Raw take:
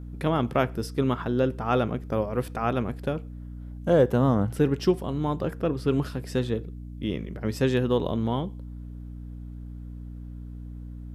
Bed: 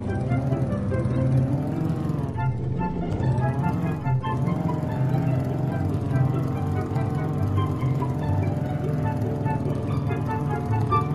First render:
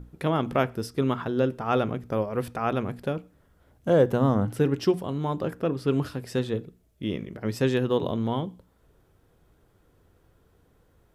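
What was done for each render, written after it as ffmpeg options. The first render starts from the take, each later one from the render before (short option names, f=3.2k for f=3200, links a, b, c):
-af "bandreject=f=60:t=h:w=6,bandreject=f=120:t=h:w=6,bandreject=f=180:t=h:w=6,bandreject=f=240:t=h:w=6,bandreject=f=300:t=h:w=6"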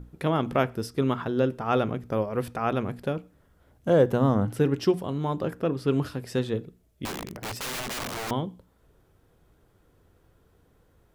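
-filter_complex "[0:a]asettb=1/sr,asplit=3[a][b][c];[a]atrim=end=7.054[d];[b]atrim=start=7.05:end=8.31,asetpts=PTS-STARTPTS,afade=t=in:d=0.004:c=qsin,afade=t=out:st=1.256:d=0.004:c=qsin,aeval=exprs='(mod(25.1*val(0)+1,2)-1)/25.1':c=same[e];[c]atrim=start=8.306[f];[d][e]acrossfade=d=0.004:c1=hsin:c2=qsin[g];[g][f]acrossfade=d=0.004:c1=qsin:c2=hsin"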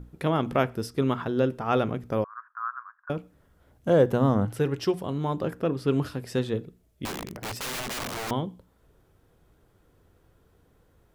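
-filter_complex "[0:a]asettb=1/sr,asplit=3[a][b][c];[a]atrim=end=2.244[d];[b]atrim=start=2.24:end=3.1,asetpts=PTS-STARTPTS,afade=t=in:d=0.004:c=qsin,afade=t=out:st=0.856:d=0.004:c=qsin,asuperpass=centerf=1300:order=8:qfactor=2.2[e];[c]atrim=start=3.096[f];[d][e]acrossfade=d=0.004:c1=hsin:c2=qsin[g];[g][f]acrossfade=d=0.004:c1=qsin:c2=hsin,asettb=1/sr,asplit=3[h][i][j];[h]atrim=end=4.454[k];[i]atrim=start=4.45:end=5.01,asetpts=PTS-STARTPTS,afade=t=in:d=0.004:c=qsin,afade=t=out:st=0.556:d=0.004:c=qsin,equalizer=f=240:w=1.5:g=-7.5[l];[j]atrim=start=5.006[m];[k][l]acrossfade=d=0.004:c1=hsin:c2=qsin[n];[n][m]acrossfade=d=0.004:c1=qsin:c2=hsin"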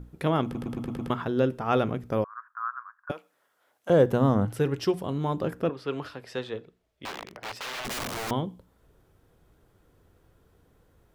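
-filter_complex "[0:a]asettb=1/sr,asplit=3[a][b][c];[a]atrim=end=3.114[d];[b]atrim=start=3.11:end=3.9,asetpts=PTS-STARTPTS,afade=t=in:d=0.004:c=qsin,afade=t=out:st=0.786:d=0.004:c=qsin,highpass=750[e];[c]atrim=start=3.896[f];[d][e]acrossfade=d=0.004:c1=hsin:c2=qsin[g];[g][f]acrossfade=d=0.004:c1=qsin:c2=hsin,asettb=1/sr,asplit=3[h][i][j];[h]atrim=end=5.694[k];[i]atrim=start=5.69:end=7.85,asetpts=PTS-STARTPTS,afade=t=in:d=0.004:c=qsin,afade=t=out:st=2.156:d=0.004:c=qsin,acrossover=split=460 5200:gain=0.224 1 0.224[l][m][n];[l][m][n]amix=inputs=3:normalize=0[o];[j]atrim=start=7.846[p];[k][o]acrossfade=d=0.004:c1=hsin:c2=qsin[q];[q][p]acrossfade=d=0.004:c1=qsin:c2=hsin,asplit=7[r][s][t][u][v][w][x];[r]atrim=end=0.552[y];[s]atrim=start=0.438:end=0.552[z];[t]atrim=start=0.438:end=0.552[aa];[u]atrim=start=0.438:end=0.552[ab];[v]atrim=start=0.438:end=0.552[ac];[w]atrim=start=0.438:end=0.552[ad];[x]atrim=start=1.098[ae];[y][z]acrossfade=d=0.004:c1=hsin:c2=hsin[af];[af][aa]acrossfade=d=0.004:c1=hsin:c2=hsin[ag];[ag][ab]acrossfade=d=0.004:c1=hsin:c2=hsin[ah];[ah][ac]acrossfade=d=0.004:c1=hsin:c2=hsin[ai];[ai][ad]acrossfade=d=0.004:c1=hsin:c2=hsin[aj];[aj][ae]acrossfade=d=0.004:c1=hsin:c2=hsin"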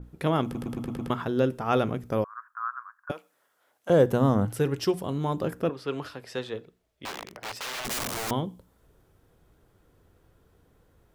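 -af "adynamicequalizer=threshold=0.00282:dfrequency=5200:dqfactor=0.7:tfrequency=5200:tqfactor=0.7:attack=5:release=100:ratio=0.375:range=3:mode=boostabove:tftype=highshelf"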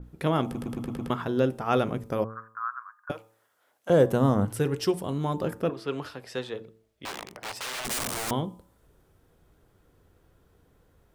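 -af "bandreject=f=111.2:t=h:w=4,bandreject=f=222.4:t=h:w=4,bandreject=f=333.6:t=h:w=4,bandreject=f=444.8:t=h:w=4,bandreject=f=556:t=h:w=4,bandreject=f=667.2:t=h:w=4,bandreject=f=778.4:t=h:w=4,bandreject=f=889.6:t=h:w=4,bandreject=f=1.0008k:t=h:w=4,bandreject=f=1.112k:t=h:w=4,bandreject=f=1.2232k:t=h:w=4,adynamicequalizer=threshold=0.00158:dfrequency=8900:dqfactor=3:tfrequency=8900:tqfactor=3:attack=5:release=100:ratio=0.375:range=2.5:mode=boostabove:tftype=bell"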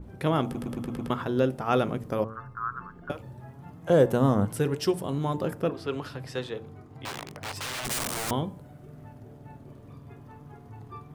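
-filter_complex "[1:a]volume=-21.5dB[a];[0:a][a]amix=inputs=2:normalize=0"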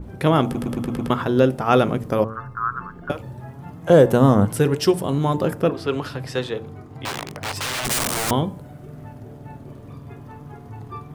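-af "volume=8dB,alimiter=limit=-3dB:level=0:latency=1"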